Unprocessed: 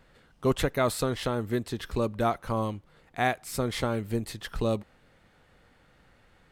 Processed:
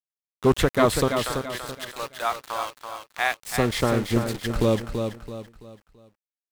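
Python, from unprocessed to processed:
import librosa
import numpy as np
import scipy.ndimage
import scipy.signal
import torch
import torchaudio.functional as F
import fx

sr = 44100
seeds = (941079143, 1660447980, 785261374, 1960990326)

y = fx.highpass(x, sr, hz=990.0, slope=12, at=(1.08, 3.36))
y = np.where(np.abs(y) >= 10.0 ** (-37.5 / 20.0), y, 0.0)
y = fx.echo_feedback(y, sr, ms=333, feedback_pct=37, wet_db=-6.5)
y = fx.doppler_dist(y, sr, depth_ms=0.22)
y = F.gain(torch.from_numpy(y), 6.0).numpy()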